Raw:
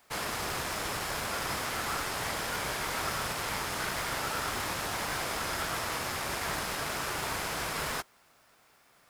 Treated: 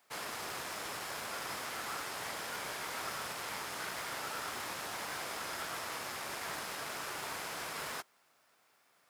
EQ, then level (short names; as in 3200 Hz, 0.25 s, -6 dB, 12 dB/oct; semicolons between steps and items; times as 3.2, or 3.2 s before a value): HPF 260 Hz 6 dB/oct; -6.5 dB